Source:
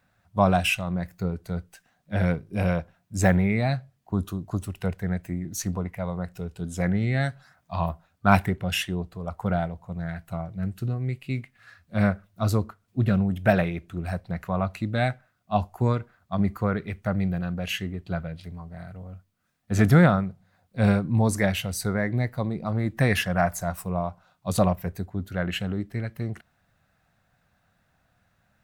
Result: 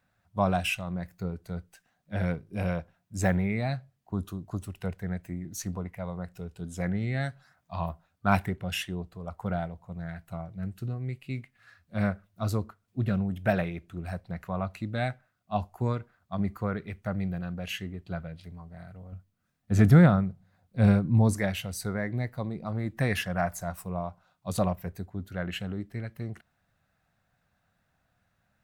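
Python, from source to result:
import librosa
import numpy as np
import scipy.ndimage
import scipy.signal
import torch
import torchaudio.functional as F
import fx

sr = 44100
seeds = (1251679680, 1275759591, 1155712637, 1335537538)

y = fx.low_shelf(x, sr, hz=330.0, db=7.0, at=(19.12, 21.34))
y = y * librosa.db_to_amplitude(-5.5)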